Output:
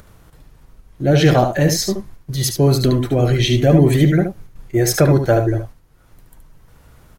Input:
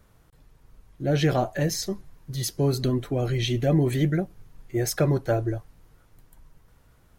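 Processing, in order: gate -45 dBFS, range -10 dB; upward compressor, threshold -44 dBFS; echo 73 ms -7 dB; gain +9 dB

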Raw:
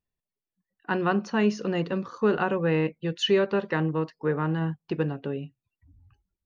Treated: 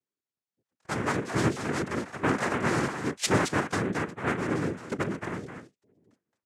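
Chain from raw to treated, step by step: speakerphone echo 0.22 s, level -6 dB; noise vocoder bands 3; gain -3 dB

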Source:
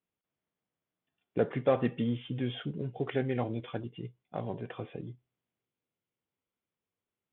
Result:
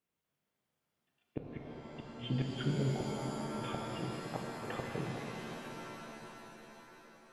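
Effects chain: notches 60/120/180/240/300/360/420 Hz; flipped gate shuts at -25 dBFS, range -38 dB; shimmer reverb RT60 3.8 s, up +7 st, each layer -2 dB, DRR 0.5 dB; gain +1.5 dB

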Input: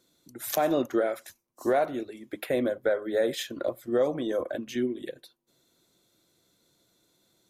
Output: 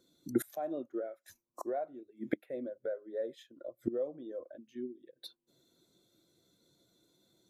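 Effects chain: flipped gate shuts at -32 dBFS, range -25 dB; spectral expander 1.5:1; gain +10 dB

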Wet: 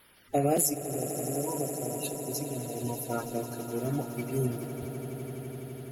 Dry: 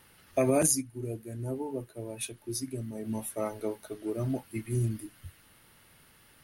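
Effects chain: bin magnitudes rounded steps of 30 dB; swelling echo 91 ms, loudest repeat 8, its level -15 dB; speed mistake 44.1 kHz file played as 48 kHz

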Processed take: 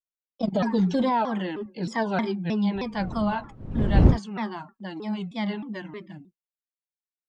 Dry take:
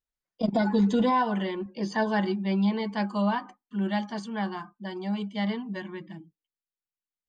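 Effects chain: 2.74–4.17 wind noise 160 Hz -24 dBFS; gate with hold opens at -47 dBFS; shaped vibrato saw down 3.2 Hz, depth 250 cents

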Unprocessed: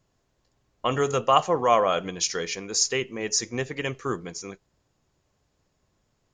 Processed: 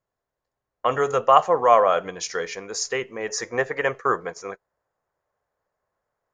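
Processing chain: gate -38 dBFS, range -13 dB; band shelf 930 Hz +9.5 dB 2.5 oct, from 3.28 s +16 dB; gain -5 dB

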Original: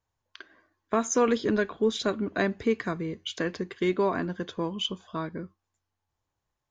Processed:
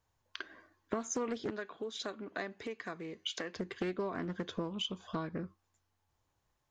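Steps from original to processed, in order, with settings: compressor 6:1, threshold -38 dBFS, peak gain reduction 18 dB; 1.5–3.56 HPF 490 Hz 6 dB/oct; Doppler distortion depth 0.44 ms; gain +3.5 dB

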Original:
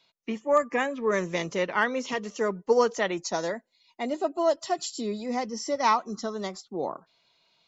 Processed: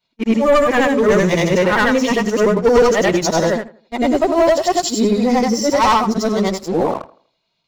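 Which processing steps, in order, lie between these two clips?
short-time reversal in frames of 0.207 s; sample leveller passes 3; low shelf 230 Hz +10 dB; tape echo 83 ms, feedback 37%, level -16.5 dB, low-pass 1900 Hz; gain +5 dB

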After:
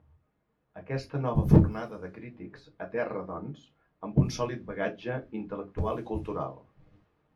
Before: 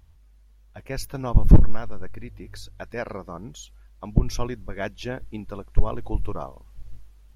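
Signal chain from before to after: low-pass opened by the level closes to 1500 Hz, open at -14.5 dBFS; HPF 120 Hz 12 dB/oct; reverb RT60 0.20 s, pre-delay 4 ms, DRR 2 dB; gain -3.5 dB

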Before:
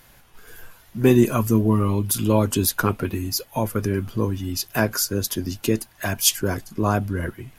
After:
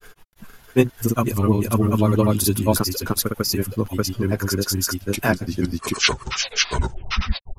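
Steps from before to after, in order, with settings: tape stop at the end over 2.19 s; grains, spray 0.567 s, pitch spread up and down by 0 st; gain +3 dB

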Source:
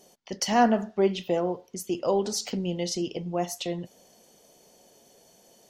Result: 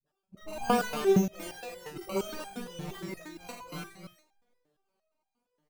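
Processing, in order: sample sorter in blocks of 16 samples; spectral noise reduction 17 dB; transient shaper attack -7 dB, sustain +11 dB; decimation with a swept rate 20×, swing 60% 0.64 Hz; dispersion highs, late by 63 ms, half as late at 320 Hz; on a send: loudspeakers at several distances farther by 32 m -11 dB, 94 m -7 dB; on the sum: stepped resonator 8.6 Hz 150–800 Hz; gain +6 dB

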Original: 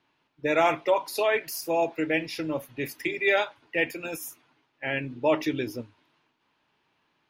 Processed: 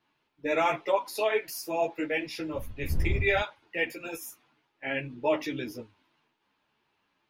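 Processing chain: 2.53–3.4 wind noise 81 Hz -27 dBFS; ensemble effect

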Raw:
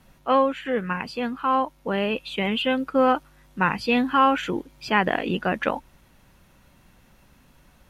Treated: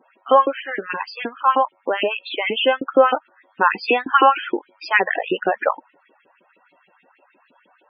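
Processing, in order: downsampling 16000 Hz; LFO high-pass saw up 6.4 Hz 310–3000 Hz; loudest bins only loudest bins 32; gain +3 dB

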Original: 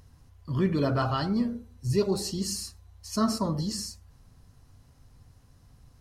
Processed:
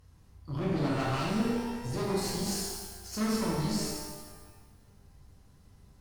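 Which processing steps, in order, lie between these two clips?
tube stage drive 30 dB, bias 0.8; shimmer reverb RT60 1.3 s, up +12 st, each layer -8 dB, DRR -3.5 dB; gain -2 dB

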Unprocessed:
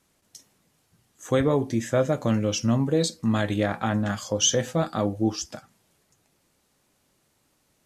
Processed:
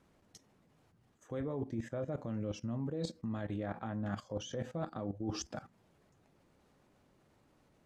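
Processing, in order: LPF 1100 Hz 6 dB/oct; level quantiser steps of 15 dB; limiter -22 dBFS, peak gain reduction 6 dB; reverse; compressor 5:1, threshold -42 dBFS, peak gain reduction 13.5 dB; reverse; gain +6 dB

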